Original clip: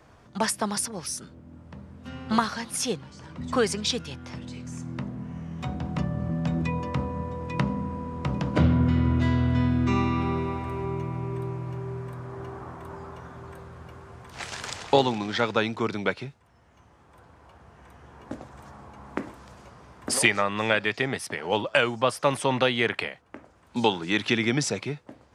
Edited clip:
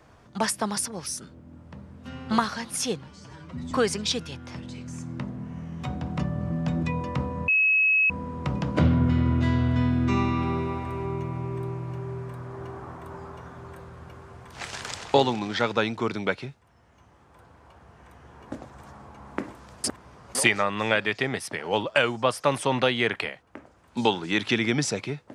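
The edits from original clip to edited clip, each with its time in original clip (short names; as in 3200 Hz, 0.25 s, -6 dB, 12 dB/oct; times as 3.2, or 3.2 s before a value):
3.08–3.5 stretch 1.5×
7.27–7.89 bleep 2570 Hz -17.5 dBFS
19.63–20.14 reverse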